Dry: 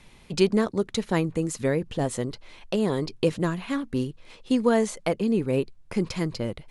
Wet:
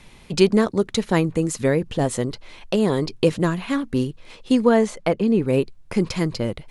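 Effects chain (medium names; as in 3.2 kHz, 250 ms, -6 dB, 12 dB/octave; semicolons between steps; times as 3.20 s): 4.64–5.46 s: treble shelf 5.3 kHz -10 dB; trim +5 dB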